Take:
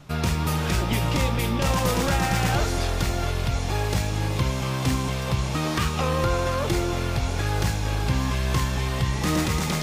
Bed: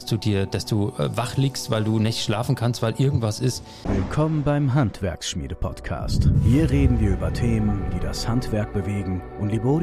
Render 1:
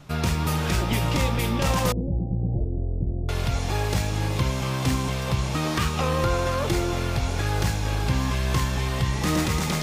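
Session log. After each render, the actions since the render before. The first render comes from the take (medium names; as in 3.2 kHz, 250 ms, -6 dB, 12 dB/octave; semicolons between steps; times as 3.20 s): 1.92–3.29 s: Gaussian low-pass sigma 20 samples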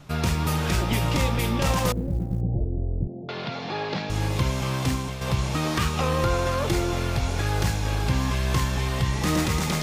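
1.73–2.41 s: companding laws mixed up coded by A; 3.07–4.10 s: elliptic band-pass 160–4400 Hz; 4.78–5.21 s: fade out, to -7.5 dB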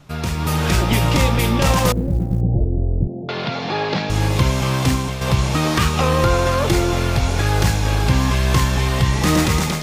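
level rider gain up to 8 dB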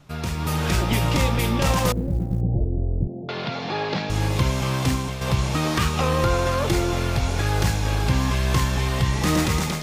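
trim -4.5 dB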